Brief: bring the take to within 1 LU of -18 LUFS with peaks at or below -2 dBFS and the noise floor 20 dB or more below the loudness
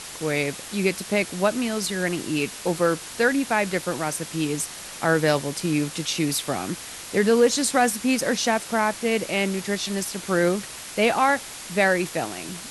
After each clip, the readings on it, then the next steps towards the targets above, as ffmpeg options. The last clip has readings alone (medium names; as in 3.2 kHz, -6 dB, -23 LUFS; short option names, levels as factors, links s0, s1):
noise floor -38 dBFS; noise floor target -44 dBFS; loudness -23.5 LUFS; peak level -7.0 dBFS; loudness target -18.0 LUFS
-> -af "afftdn=nr=6:nf=-38"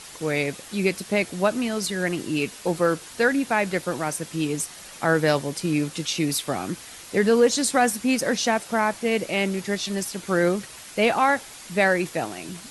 noise floor -43 dBFS; noise floor target -44 dBFS
-> -af "afftdn=nr=6:nf=-43"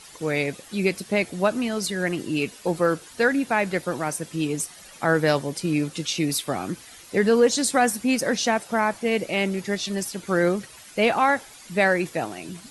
noise floor -46 dBFS; loudness -24.0 LUFS; peak level -7.0 dBFS; loudness target -18.0 LUFS
-> -af "volume=2,alimiter=limit=0.794:level=0:latency=1"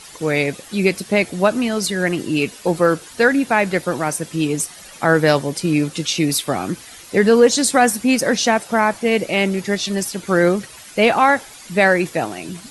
loudness -18.0 LUFS; peak level -2.0 dBFS; noise floor -40 dBFS